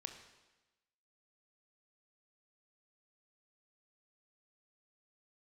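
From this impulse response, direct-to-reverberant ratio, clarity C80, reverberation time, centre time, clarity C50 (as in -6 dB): 5.5 dB, 9.5 dB, 1.1 s, 22 ms, 7.5 dB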